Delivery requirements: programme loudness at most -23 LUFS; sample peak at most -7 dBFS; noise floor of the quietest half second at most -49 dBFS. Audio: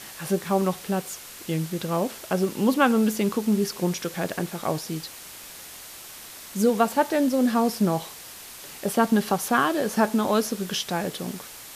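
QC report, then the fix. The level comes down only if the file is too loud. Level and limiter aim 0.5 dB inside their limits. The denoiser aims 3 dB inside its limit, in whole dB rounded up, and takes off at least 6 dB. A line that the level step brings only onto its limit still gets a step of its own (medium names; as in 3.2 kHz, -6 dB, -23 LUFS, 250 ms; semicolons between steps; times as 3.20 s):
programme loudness -25.0 LUFS: pass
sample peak -6.0 dBFS: fail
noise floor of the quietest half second -42 dBFS: fail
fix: noise reduction 10 dB, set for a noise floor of -42 dBFS; peak limiter -7.5 dBFS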